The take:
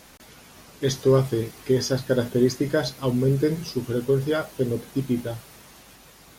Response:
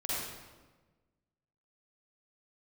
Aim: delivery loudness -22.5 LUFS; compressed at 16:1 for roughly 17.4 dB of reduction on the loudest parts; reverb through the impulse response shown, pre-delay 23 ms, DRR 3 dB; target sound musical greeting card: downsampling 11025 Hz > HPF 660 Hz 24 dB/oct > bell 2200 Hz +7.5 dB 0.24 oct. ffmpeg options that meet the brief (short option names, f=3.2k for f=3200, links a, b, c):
-filter_complex "[0:a]acompressor=threshold=-31dB:ratio=16,asplit=2[a][b];[1:a]atrim=start_sample=2205,adelay=23[c];[b][c]afir=irnorm=-1:irlink=0,volume=-8.5dB[d];[a][d]amix=inputs=2:normalize=0,aresample=11025,aresample=44100,highpass=f=660:w=0.5412,highpass=f=660:w=1.3066,equalizer=f=2.2k:t=o:w=0.24:g=7.5,volume=22dB"